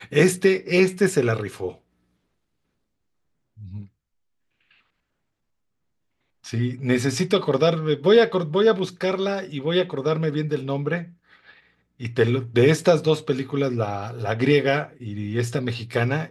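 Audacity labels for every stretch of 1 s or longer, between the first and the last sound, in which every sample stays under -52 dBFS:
1.790000	3.570000	silence
4.800000	6.440000	silence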